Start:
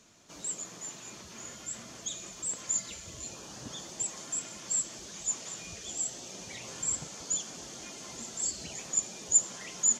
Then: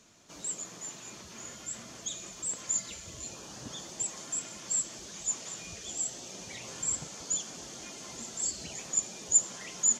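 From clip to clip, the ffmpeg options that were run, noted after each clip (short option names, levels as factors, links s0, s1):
-af anull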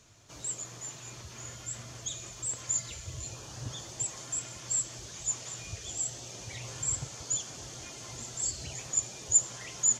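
-af "lowshelf=f=150:t=q:w=3:g=7"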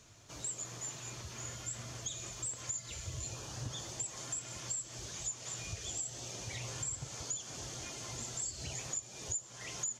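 -af "acompressor=threshold=0.0158:ratio=8"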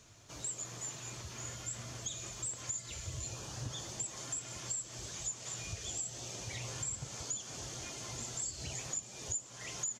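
-filter_complex "[0:a]asplit=6[s0][s1][s2][s3][s4][s5];[s1]adelay=333,afreqshift=79,volume=0.1[s6];[s2]adelay=666,afreqshift=158,volume=0.0617[s7];[s3]adelay=999,afreqshift=237,volume=0.0385[s8];[s4]adelay=1332,afreqshift=316,volume=0.0237[s9];[s5]adelay=1665,afreqshift=395,volume=0.0148[s10];[s0][s6][s7][s8][s9][s10]amix=inputs=6:normalize=0"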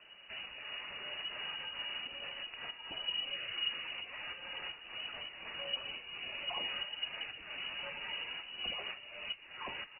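-af "lowpass=f=2600:t=q:w=0.5098,lowpass=f=2600:t=q:w=0.6013,lowpass=f=2600:t=q:w=0.9,lowpass=f=2600:t=q:w=2.563,afreqshift=-3000,volume=1.88"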